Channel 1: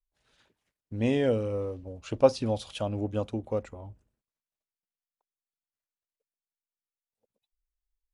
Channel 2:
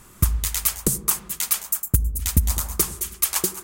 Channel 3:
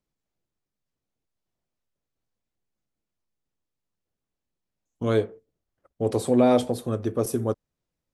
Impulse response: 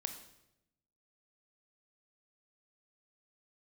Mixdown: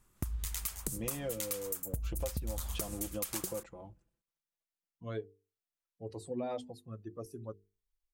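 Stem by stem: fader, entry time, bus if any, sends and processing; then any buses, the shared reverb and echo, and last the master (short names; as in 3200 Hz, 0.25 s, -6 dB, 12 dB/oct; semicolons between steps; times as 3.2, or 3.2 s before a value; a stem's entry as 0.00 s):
-5.0 dB, 0.00 s, no send, comb 5.9 ms, depth 84%; compressor 2:1, threshold -34 dBFS, peak gain reduction 13 dB
-9.0 dB, 0.00 s, no send, gate -39 dBFS, range -14 dB; low shelf 73 Hz +8.5 dB; compressor 3:1, threshold -20 dBFS, peak gain reduction 9 dB
-12.5 dB, 0.00 s, no send, per-bin expansion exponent 2; de-esser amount 75%; notches 50/100/150/200/250/300/350/400/450 Hz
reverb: off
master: compressor 3:1, threshold -34 dBFS, peak gain reduction 7.5 dB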